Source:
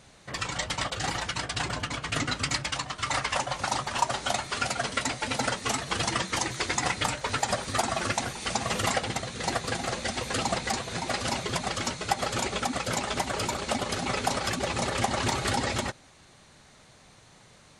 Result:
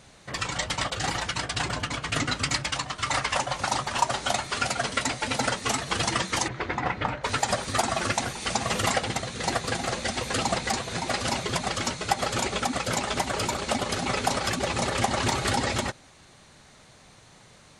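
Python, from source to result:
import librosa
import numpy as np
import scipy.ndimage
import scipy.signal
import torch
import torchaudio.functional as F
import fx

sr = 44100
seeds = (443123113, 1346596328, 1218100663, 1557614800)

y = fx.lowpass(x, sr, hz=1900.0, slope=12, at=(6.47, 7.23), fade=0.02)
y = y * librosa.db_to_amplitude(2.0)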